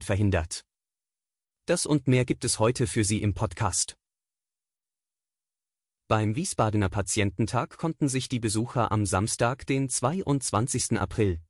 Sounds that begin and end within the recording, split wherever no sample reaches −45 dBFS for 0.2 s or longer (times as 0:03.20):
0:01.68–0:03.92